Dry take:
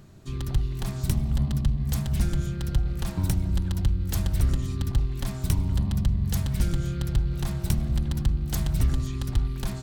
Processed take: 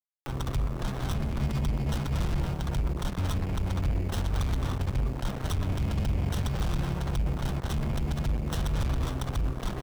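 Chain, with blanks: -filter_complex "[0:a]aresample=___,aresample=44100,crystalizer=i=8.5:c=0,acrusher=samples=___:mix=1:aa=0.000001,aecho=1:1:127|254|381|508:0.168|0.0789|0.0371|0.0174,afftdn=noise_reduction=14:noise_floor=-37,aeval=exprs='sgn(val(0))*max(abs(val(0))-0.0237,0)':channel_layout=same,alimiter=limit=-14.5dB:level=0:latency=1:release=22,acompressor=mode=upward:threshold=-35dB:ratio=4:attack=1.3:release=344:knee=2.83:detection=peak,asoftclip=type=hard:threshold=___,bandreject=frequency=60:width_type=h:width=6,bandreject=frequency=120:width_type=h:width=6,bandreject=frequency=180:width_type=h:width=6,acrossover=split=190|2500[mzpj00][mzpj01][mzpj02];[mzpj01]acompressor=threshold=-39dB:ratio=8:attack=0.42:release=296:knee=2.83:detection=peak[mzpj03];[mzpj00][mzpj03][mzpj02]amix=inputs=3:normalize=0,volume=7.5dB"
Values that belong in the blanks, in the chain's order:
16000, 19, -30dB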